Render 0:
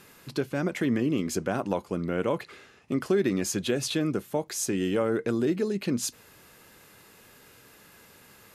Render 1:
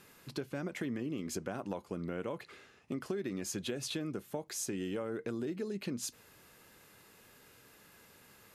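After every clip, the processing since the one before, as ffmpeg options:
ffmpeg -i in.wav -af "acompressor=threshold=-28dB:ratio=5,volume=-6dB" out.wav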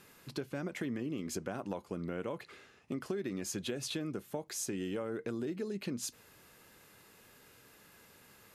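ffmpeg -i in.wav -af anull out.wav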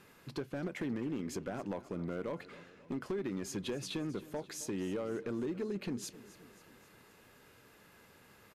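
ffmpeg -i in.wav -af "highshelf=frequency=4100:gain=-8,asoftclip=type=hard:threshold=-32dB,aecho=1:1:267|534|801|1068|1335:0.133|0.0747|0.0418|0.0234|0.0131,volume=1dB" out.wav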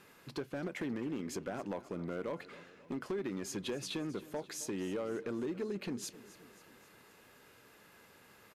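ffmpeg -i in.wav -af "lowshelf=frequency=180:gain=-6.5,volume=1dB" out.wav

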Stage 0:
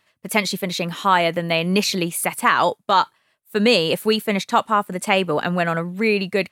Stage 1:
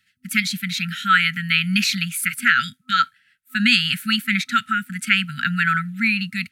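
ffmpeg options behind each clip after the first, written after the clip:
ffmpeg -i in.wav -filter_complex "[0:a]afftfilt=real='re*(1-between(b*sr/4096,250,1300))':imag='im*(1-between(b*sr/4096,250,1300))':win_size=4096:overlap=0.75,acrossover=split=310|460|2700[link_01][link_02][link_03][link_04];[link_03]dynaudnorm=framelen=110:gausssize=9:maxgain=9.5dB[link_05];[link_01][link_02][link_05][link_04]amix=inputs=4:normalize=0,volume=-1dB" out.wav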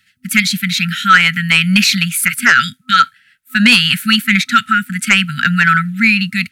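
ffmpeg -i in.wav -af "aeval=exprs='0.891*sin(PI/2*1.78*val(0)/0.891)':channel_layout=same" out.wav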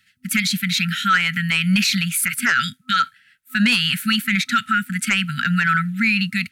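ffmpeg -i in.wav -af "alimiter=limit=-6.5dB:level=0:latency=1:release=58,volume=-3.5dB" out.wav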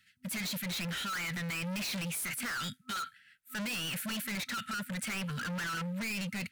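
ffmpeg -i in.wav -af "volume=28.5dB,asoftclip=hard,volume=-28.5dB,volume=-6.5dB" out.wav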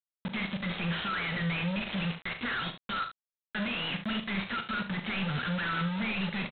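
ffmpeg -i in.wav -af "aresample=8000,acrusher=bits=5:mix=0:aa=0.000001,aresample=44100,aecho=1:1:41|72:0.355|0.282" out.wav

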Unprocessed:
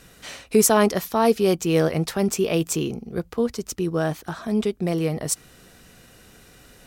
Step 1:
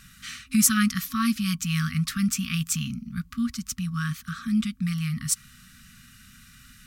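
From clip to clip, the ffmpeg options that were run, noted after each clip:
ffmpeg -i in.wav -af "afftfilt=real='re*(1-between(b*sr/4096,260,1100))':imag='im*(1-between(b*sr/4096,260,1100))':win_size=4096:overlap=0.75" out.wav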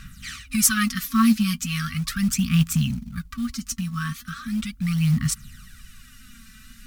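ffmpeg -i in.wav -af "aphaser=in_gain=1:out_gain=1:delay=4.6:decay=0.61:speed=0.38:type=sinusoidal,acrusher=bits=6:mode=log:mix=0:aa=0.000001,lowshelf=frequency=66:gain=9.5" out.wav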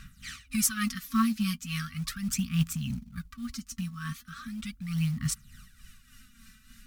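ffmpeg -i in.wav -af "tremolo=f=3.4:d=0.59,volume=-5.5dB" out.wav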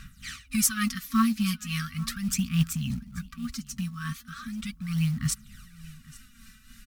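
ffmpeg -i in.wav -af "aecho=1:1:835:0.0841,volume=2.5dB" out.wav

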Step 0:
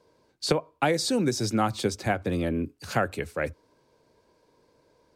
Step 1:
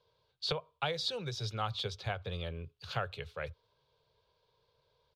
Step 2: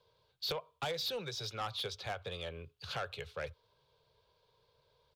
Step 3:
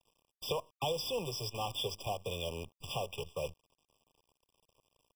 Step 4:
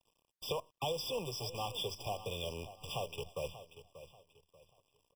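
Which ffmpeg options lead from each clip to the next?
ffmpeg -i in.wav -af "firequalizer=gain_entry='entry(130,0);entry(270,-27);entry(430,-5);entry(710,-6);entry(1200,-1);entry(1900,-7);entry(3400,9);entry(5100,-4);entry(8100,-18);entry(15000,-13)':delay=0.05:min_phase=1,volume=-6dB" out.wav
ffmpeg -i in.wav -filter_complex "[0:a]acrossover=split=380[link_01][link_02];[link_01]acompressor=threshold=-49dB:ratio=6[link_03];[link_02]asoftclip=type=tanh:threshold=-34dB[link_04];[link_03][link_04]amix=inputs=2:normalize=0,volume=2dB" out.wav
ffmpeg -i in.wav -af "acrusher=bits=8:dc=4:mix=0:aa=0.000001,afftfilt=real='re*eq(mod(floor(b*sr/1024/1200),2),0)':imag='im*eq(mod(floor(b*sr/1024/1200),2),0)':win_size=1024:overlap=0.75,volume=4dB" out.wav
ffmpeg -i in.wav -af "aecho=1:1:586|1172|1758:0.211|0.0655|0.0203,volume=-2dB" out.wav

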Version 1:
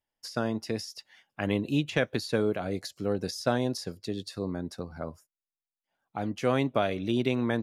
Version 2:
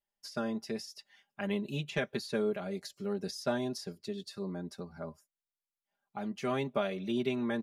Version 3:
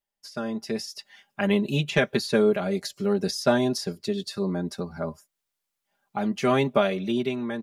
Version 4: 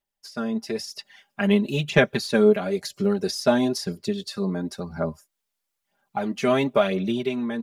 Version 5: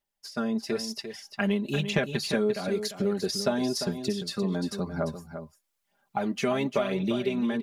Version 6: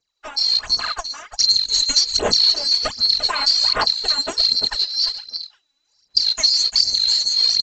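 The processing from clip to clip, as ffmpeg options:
ffmpeg -i in.wav -af "aecho=1:1:5:0.9,volume=-8dB" out.wav
ffmpeg -i in.wav -af "dynaudnorm=framelen=130:gausssize=11:maxgain=9dB,volume=2dB" out.wav
ffmpeg -i in.wav -af "aphaser=in_gain=1:out_gain=1:delay=4.7:decay=0.43:speed=1:type=sinusoidal" out.wav
ffmpeg -i in.wav -af "acompressor=threshold=-24dB:ratio=4,aecho=1:1:347:0.335" out.wav
ffmpeg -i in.wav -af "afftfilt=real='real(if(lt(b,736),b+184*(1-2*mod(floor(b/184),2)),b),0)':imag='imag(if(lt(b,736),b+184*(1-2*mod(floor(b/184),2)),b),0)':win_size=2048:overlap=0.75,aphaser=in_gain=1:out_gain=1:delay=3.6:decay=0.68:speed=1.3:type=sinusoidal,aresample=16000,aresample=44100,volume=7dB" out.wav

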